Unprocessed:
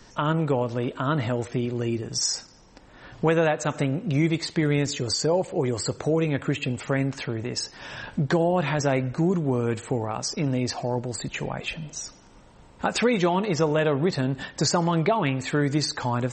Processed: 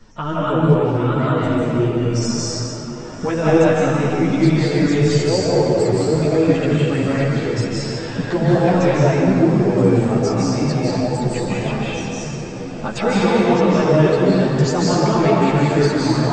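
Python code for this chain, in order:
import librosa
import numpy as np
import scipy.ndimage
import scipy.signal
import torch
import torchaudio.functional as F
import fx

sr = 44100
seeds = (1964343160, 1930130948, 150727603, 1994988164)

y = fx.tilt_eq(x, sr, slope=-1.5)
y = fx.echo_diffused(y, sr, ms=1011, feedback_pct=74, wet_db=-15.0)
y = fx.rev_freeverb(y, sr, rt60_s=2.5, hf_ratio=0.8, predelay_ms=120, drr_db=-7.0)
y = fx.ensemble(y, sr)
y = y * 10.0 ** (2.0 / 20.0)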